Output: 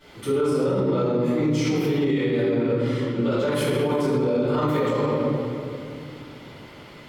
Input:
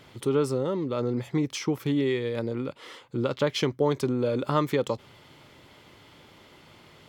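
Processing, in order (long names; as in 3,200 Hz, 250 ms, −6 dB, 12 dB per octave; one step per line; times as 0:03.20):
0:03.51–0:03.99: high shelf with overshoot 7,400 Hz +11 dB, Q 3
convolution reverb RT60 2.5 s, pre-delay 3 ms, DRR −17.5 dB
brickwall limiter −5.5 dBFS, peak gain reduction 10 dB
level −9 dB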